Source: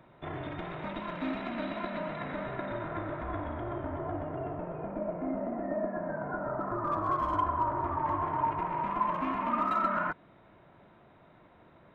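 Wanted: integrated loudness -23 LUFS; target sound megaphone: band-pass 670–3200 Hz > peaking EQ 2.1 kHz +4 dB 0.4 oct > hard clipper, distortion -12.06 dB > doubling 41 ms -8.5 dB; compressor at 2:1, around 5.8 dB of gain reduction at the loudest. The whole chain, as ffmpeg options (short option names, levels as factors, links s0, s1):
-filter_complex "[0:a]acompressor=threshold=0.0178:ratio=2,highpass=670,lowpass=3200,equalizer=f=2100:t=o:w=0.4:g=4,asoftclip=type=hard:threshold=0.0178,asplit=2[s0][s1];[s1]adelay=41,volume=0.376[s2];[s0][s2]amix=inputs=2:normalize=0,volume=7.08"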